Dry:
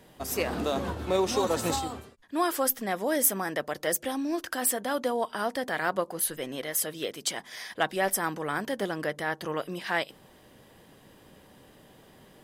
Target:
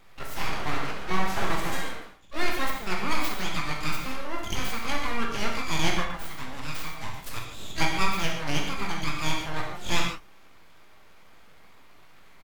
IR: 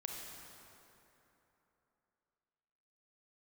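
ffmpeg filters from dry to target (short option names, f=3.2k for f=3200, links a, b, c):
-filter_complex "[0:a]equalizer=f=160:t=o:w=0.67:g=-6,equalizer=f=630:t=o:w=0.67:g=6,equalizer=f=1.6k:t=o:w=0.67:g=11,equalizer=f=4k:t=o:w=0.67:g=-11,equalizer=f=10k:t=o:w=0.67:g=-6,aeval=exprs='abs(val(0))':c=same,asplit=3[a][b][c];[b]asetrate=33038,aresample=44100,atempo=1.33484,volume=-15dB[d];[c]asetrate=88200,aresample=44100,atempo=0.5,volume=-6dB[e];[a][d][e]amix=inputs=3:normalize=0[f];[1:a]atrim=start_sample=2205,afade=t=out:st=0.36:d=0.01,atrim=end_sample=16317,asetrate=83790,aresample=44100[g];[f][g]afir=irnorm=-1:irlink=0,volume=5.5dB"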